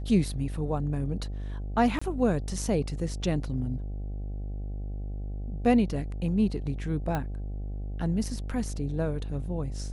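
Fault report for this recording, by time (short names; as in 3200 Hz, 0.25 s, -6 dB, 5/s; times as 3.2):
buzz 50 Hz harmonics 16 -34 dBFS
1.99–2.02 gap 25 ms
7.15 pop -17 dBFS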